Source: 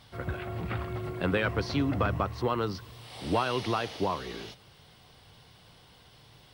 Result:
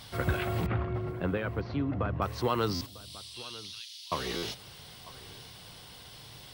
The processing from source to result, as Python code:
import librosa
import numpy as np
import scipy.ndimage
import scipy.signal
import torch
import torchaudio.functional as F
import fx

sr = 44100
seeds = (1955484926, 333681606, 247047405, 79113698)

y = fx.high_shelf(x, sr, hz=4100.0, db=9.5)
y = fx.rider(y, sr, range_db=5, speed_s=0.5)
y = fx.spacing_loss(y, sr, db_at_10k=40, at=(0.66, 2.22))
y = fx.ladder_highpass(y, sr, hz=2900.0, resonance_pct=30, at=(2.86, 4.12))
y = y + 10.0 ** (-19.0 / 20.0) * np.pad(y, (int(948 * sr / 1000.0), 0))[:len(y)]
y = fx.buffer_glitch(y, sr, at_s=(2.74, 4.36), block=512, repeats=5)